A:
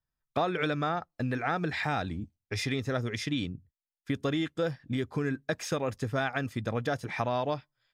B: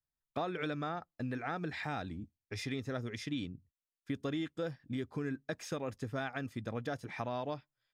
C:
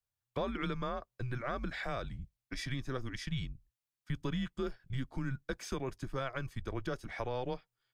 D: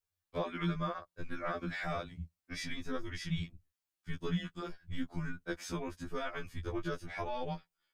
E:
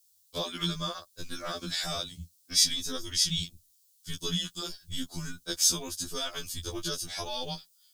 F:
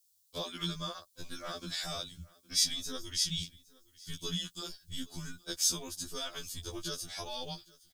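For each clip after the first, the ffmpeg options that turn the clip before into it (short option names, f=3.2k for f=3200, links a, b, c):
-af "equalizer=f=270:t=o:w=1:g=3,volume=-8.5dB"
-af "afreqshift=-130,volume=1dB"
-af "afftfilt=real='re*2*eq(mod(b,4),0)':imag='im*2*eq(mod(b,4),0)':win_size=2048:overlap=0.75,volume=2.5dB"
-af "aexciter=amount=13.4:drive=5.2:freq=3.3k"
-af "aecho=1:1:815:0.0668,volume=-5dB"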